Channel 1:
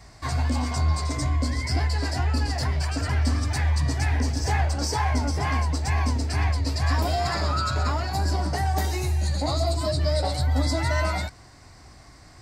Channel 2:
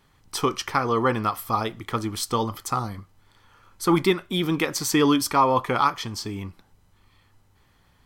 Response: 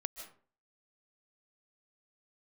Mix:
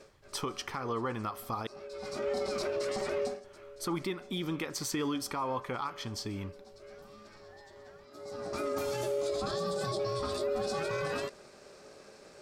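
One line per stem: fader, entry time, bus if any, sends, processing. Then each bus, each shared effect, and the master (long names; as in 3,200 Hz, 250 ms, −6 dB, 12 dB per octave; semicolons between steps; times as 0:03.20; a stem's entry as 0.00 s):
−2.0 dB, 0.00 s, no send, ring modulation 490 Hz; automatic ducking −24 dB, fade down 0.20 s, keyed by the second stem
−6.5 dB, 0.00 s, muted 0:01.67–0:03.44, send −16 dB, downward compressor 2.5 to 1, threshold −27 dBFS, peak gain reduction 9 dB; high-shelf EQ 11,000 Hz −6.5 dB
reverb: on, RT60 0.45 s, pre-delay 110 ms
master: brickwall limiter −24.5 dBFS, peak gain reduction 8.5 dB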